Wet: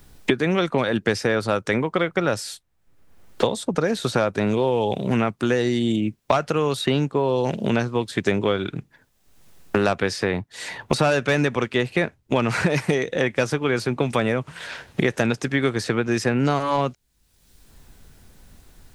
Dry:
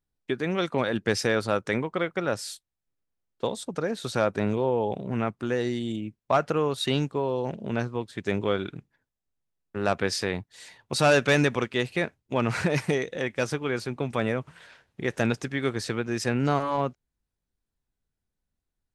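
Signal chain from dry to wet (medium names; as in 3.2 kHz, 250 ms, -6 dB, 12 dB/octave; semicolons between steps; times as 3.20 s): three bands compressed up and down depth 100%; trim +4.5 dB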